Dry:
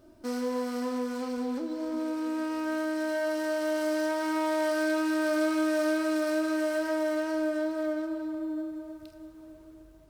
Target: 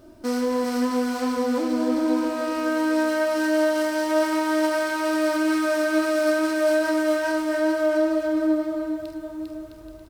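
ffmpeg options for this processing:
-af "alimiter=limit=-24dB:level=0:latency=1,aecho=1:1:400|660|829|938.8|1010:0.631|0.398|0.251|0.158|0.1,volume=7.5dB"

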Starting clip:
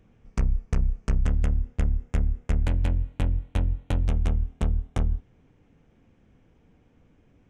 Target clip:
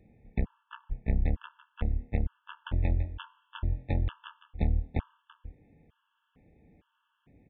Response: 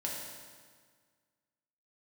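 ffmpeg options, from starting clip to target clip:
-filter_complex "[0:a]highpass=f=48:p=1,bandreject=f=125.3:t=h:w=4,bandreject=f=250.6:t=h:w=4,bandreject=f=375.9:t=h:w=4,bandreject=f=501.2:t=h:w=4,bandreject=f=626.5:t=h:w=4,bandreject=f=751.8:t=h:w=4,bandreject=f=877.1:t=h:w=4,bandreject=f=1.0024k:t=h:w=4,bandreject=f=1.1277k:t=h:w=4,aresample=8000,aeval=exprs='clip(val(0),-1,0.0447)':c=same,aresample=44100,aecho=1:1:335:0.237,asplit=2[a][b];[1:a]atrim=start_sample=2205,afade=t=out:st=0.28:d=0.01,atrim=end_sample=12789[c];[b][c]afir=irnorm=-1:irlink=0,volume=-24dB[d];[a][d]amix=inputs=2:normalize=0,afftfilt=real='re*gt(sin(2*PI*1.1*pts/sr)*(1-2*mod(floor(b*sr/1024/880),2)),0)':imag='im*gt(sin(2*PI*1.1*pts/sr)*(1-2*mod(floor(b*sr/1024/880),2)),0)':win_size=1024:overlap=0.75"

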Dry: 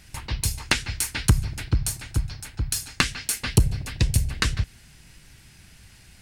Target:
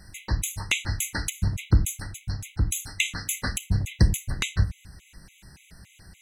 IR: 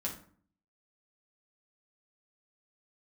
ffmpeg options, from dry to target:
-filter_complex "[0:a]asplit=2[a][b];[b]lowpass=f=4k:w=0.5412,lowpass=f=4k:w=1.3066[c];[1:a]atrim=start_sample=2205[d];[c][d]afir=irnorm=-1:irlink=0,volume=-8dB[e];[a][e]amix=inputs=2:normalize=0,afftfilt=real='re*gt(sin(2*PI*3.5*pts/sr)*(1-2*mod(floor(b*sr/1024/2000),2)),0)':imag='im*gt(sin(2*PI*3.5*pts/sr)*(1-2*mod(floor(b*sr/1024/2000),2)),0)':win_size=1024:overlap=0.75,volume=1dB"

